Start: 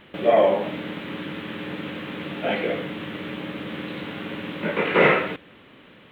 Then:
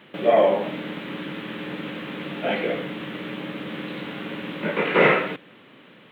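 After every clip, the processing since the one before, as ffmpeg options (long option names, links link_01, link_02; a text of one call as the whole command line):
ffmpeg -i in.wav -af "highpass=frequency=120:width=0.5412,highpass=frequency=120:width=1.3066" out.wav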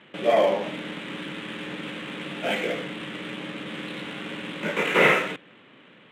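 ffmpeg -i in.wav -af "highshelf=frequency=2300:gain=9.5,adynamicsmooth=sensitivity=7:basefreq=3100,volume=-3.5dB" out.wav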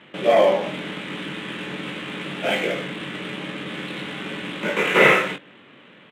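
ffmpeg -i in.wav -filter_complex "[0:a]asplit=2[link_01][link_02];[link_02]adelay=21,volume=-7dB[link_03];[link_01][link_03]amix=inputs=2:normalize=0,volume=3dB" out.wav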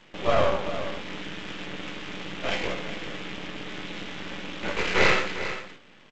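ffmpeg -i in.wav -filter_complex "[0:a]acrossover=split=4300[link_01][link_02];[link_01]aeval=exprs='max(val(0),0)':channel_layout=same[link_03];[link_03][link_02]amix=inputs=2:normalize=0,aecho=1:1:401:0.266,volume=-2dB" -ar 16000 -c:a g722 out.g722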